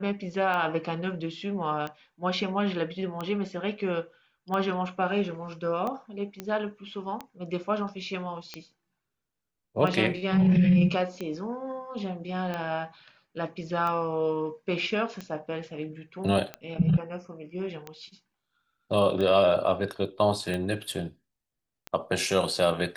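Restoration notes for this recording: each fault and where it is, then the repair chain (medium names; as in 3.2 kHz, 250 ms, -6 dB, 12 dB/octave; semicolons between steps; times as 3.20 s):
tick 45 rpm -20 dBFS
6.40 s: pop -19 dBFS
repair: de-click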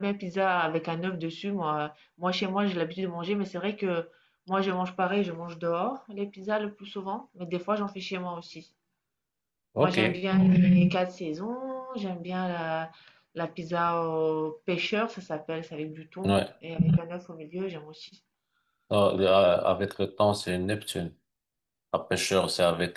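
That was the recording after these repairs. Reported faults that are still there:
nothing left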